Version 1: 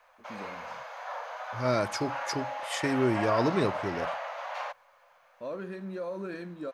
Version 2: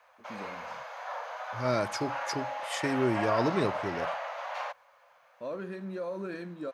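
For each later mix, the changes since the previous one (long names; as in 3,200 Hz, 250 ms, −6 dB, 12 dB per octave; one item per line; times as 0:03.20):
second voice: send off
master: add high-pass filter 66 Hz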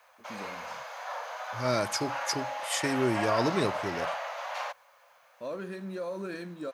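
master: add high-shelf EQ 4,700 Hz +11.5 dB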